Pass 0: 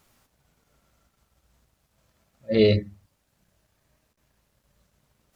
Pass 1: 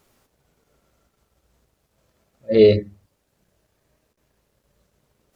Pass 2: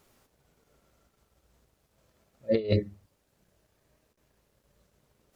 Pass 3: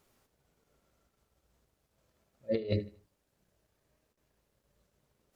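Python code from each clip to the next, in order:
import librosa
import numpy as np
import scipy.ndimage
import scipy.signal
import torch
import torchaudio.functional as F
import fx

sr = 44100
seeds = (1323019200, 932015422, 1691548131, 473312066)

y1 = fx.peak_eq(x, sr, hz=420.0, db=7.5, octaves=1.0)
y2 = fx.over_compress(y1, sr, threshold_db=-17.0, ratio=-0.5)
y2 = y2 * librosa.db_to_amplitude(-7.0)
y3 = fx.echo_feedback(y2, sr, ms=77, feedback_pct=34, wet_db=-18.0)
y3 = y3 * librosa.db_to_amplitude(-6.0)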